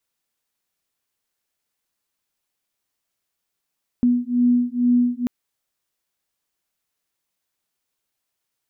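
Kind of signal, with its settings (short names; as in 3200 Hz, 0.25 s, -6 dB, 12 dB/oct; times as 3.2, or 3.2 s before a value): beating tones 243 Hz, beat 2.2 Hz, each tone -18.5 dBFS 1.24 s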